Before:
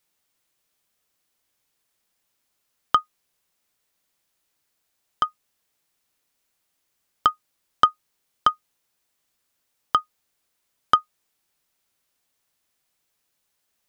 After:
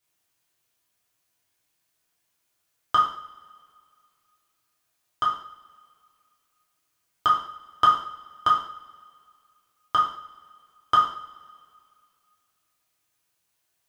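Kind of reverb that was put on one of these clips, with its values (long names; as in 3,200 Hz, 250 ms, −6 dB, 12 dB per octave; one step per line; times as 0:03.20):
coupled-rooms reverb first 0.55 s, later 2.3 s, from −22 dB, DRR −6 dB
level −7 dB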